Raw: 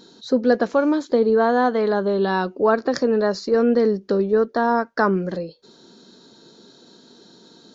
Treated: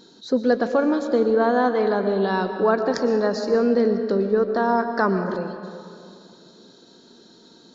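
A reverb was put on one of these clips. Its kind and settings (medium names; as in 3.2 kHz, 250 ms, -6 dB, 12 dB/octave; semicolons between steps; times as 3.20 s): algorithmic reverb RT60 2.4 s, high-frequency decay 0.55×, pre-delay 80 ms, DRR 7.5 dB; trim -2 dB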